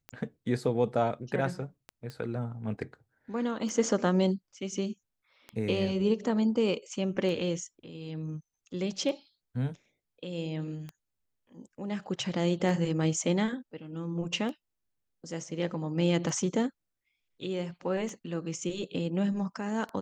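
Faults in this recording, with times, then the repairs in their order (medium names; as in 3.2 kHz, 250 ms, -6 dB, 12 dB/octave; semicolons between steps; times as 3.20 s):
tick 33 1/3 rpm -25 dBFS
2.10 s: pop -27 dBFS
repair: de-click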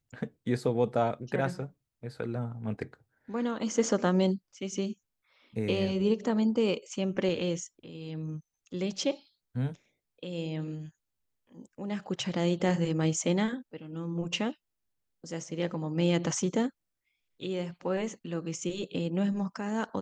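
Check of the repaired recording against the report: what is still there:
nothing left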